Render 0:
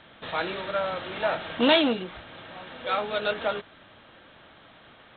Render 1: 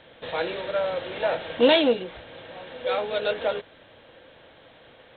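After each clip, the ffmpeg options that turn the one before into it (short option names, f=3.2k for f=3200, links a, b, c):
-af "equalizer=f=200:t=o:w=0.33:g=-5,equalizer=f=500:t=o:w=0.33:g=10,equalizer=f=1.25k:t=o:w=0.33:g=-7"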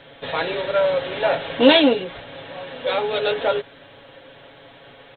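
-af "aecho=1:1:7.2:0.7,volume=4.5dB"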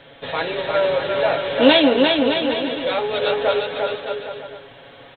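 -af "aecho=1:1:350|612.5|809.4|957|1068:0.631|0.398|0.251|0.158|0.1"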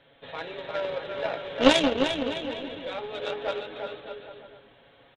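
-filter_complex "[0:a]asplit=6[a][b][c][d][e][f];[b]adelay=139,afreqshift=-95,volume=-17.5dB[g];[c]adelay=278,afreqshift=-190,volume=-22.2dB[h];[d]adelay=417,afreqshift=-285,volume=-27dB[i];[e]adelay=556,afreqshift=-380,volume=-31.7dB[j];[f]adelay=695,afreqshift=-475,volume=-36.4dB[k];[a][g][h][i][j][k]amix=inputs=6:normalize=0,aeval=exprs='0.841*(cos(1*acos(clip(val(0)/0.841,-1,1)))-cos(1*PI/2))+0.211*(cos(3*acos(clip(val(0)/0.841,-1,1)))-cos(3*PI/2))':c=same,volume=-1.5dB"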